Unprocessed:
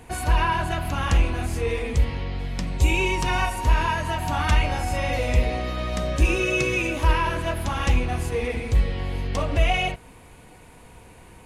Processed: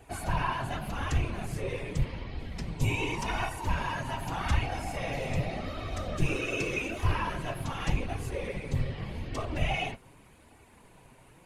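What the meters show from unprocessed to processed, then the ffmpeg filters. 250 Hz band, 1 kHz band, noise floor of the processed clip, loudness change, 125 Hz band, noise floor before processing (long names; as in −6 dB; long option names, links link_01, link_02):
−6.5 dB, −8.5 dB, −57 dBFS, −8.5 dB, −7.5 dB, −48 dBFS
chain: -af "afftfilt=real='hypot(re,im)*cos(2*PI*random(0))':imag='hypot(re,im)*sin(2*PI*random(1))':win_size=512:overlap=0.75,flanger=delay=2.6:depth=5.1:regen=-36:speed=0.85:shape=sinusoidal,volume=1.5dB"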